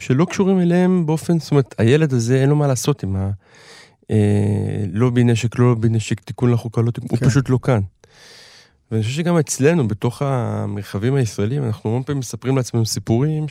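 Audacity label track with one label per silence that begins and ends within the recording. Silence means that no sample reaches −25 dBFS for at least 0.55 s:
3.340000	4.100000	silence
7.850000	8.920000	silence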